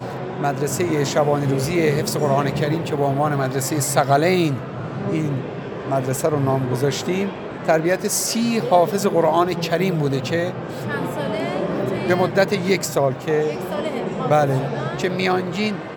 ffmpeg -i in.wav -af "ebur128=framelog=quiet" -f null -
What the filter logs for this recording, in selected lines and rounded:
Integrated loudness:
  I:         -20.7 LUFS
  Threshold: -30.7 LUFS
Loudness range:
  LRA:         2.3 LU
  Threshold: -40.6 LUFS
  LRA low:   -21.7 LUFS
  LRA high:  -19.4 LUFS